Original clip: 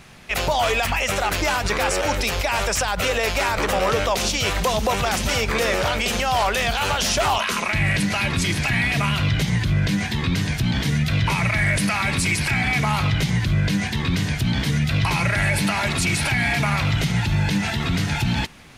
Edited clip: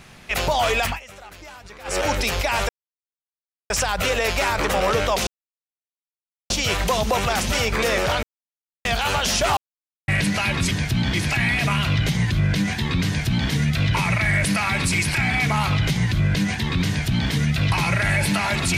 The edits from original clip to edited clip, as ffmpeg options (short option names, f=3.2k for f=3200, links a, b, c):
-filter_complex "[0:a]asplit=11[a][b][c][d][e][f][g][h][i][j][k];[a]atrim=end=1,asetpts=PTS-STARTPTS,afade=t=out:st=0.87:d=0.13:silence=0.105925[l];[b]atrim=start=1:end=1.84,asetpts=PTS-STARTPTS,volume=-19.5dB[m];[c]atrim=start=1.84:end=2.69,asetpts=PTS-STARTPTS,afade=t=in:d=0.13:silence=0.105925,afade=t=out:st=0.846:d=0.004:c=hsin,apad=pad_dur=1.01[n];[d]atrim=start=2.69:end=4.26,asetpts=PTS-STARTPTS,afade=t=in:d=0.004:c=hsin,afade=t=out:st=1.566:d=0.004:c=hsin,apad=pad_dur=1.23[o];[e]atrim=start=4.26:end=5.99,asetpts=PTS-STARTPTS,afade=t=in:d=0.004:c=hsin,afade=t=out:st=1.726:d=0.004:c=hsin[p];[f]atrim=start=5.99:end=6.61,asetpts=PTS-STARTPTS,volume=0[q];[g]atrim=start=6.61:end=7.33,asetpts=PTS-STARTPTS,afade=t=in:d=0.004:c=hsin,afade=t=out:st=0.716:d=0.004:c=hsin[r];[h]atrim=start=7.33:end=7.84,asetpts=PTS-STARTPTS,volume=0[s];[i]atrim=start=7.84:end=8.472,asetpts=PTS-STARTPTS,afade=t=in:d=0.004:c=hsin[t];[j]atrim=start=10.398:end=10.832[u];[k]atrim=start=8.468[v];[l][m][n][o][p][q][r][s][t]concat=n=9:v=0:a=1[w];[w][u]acrossfade=d=0.004:c1=hsin:c2=hsin[x];[x][v]acrossfade=d=0.004:c1=hsin:c2=hsin"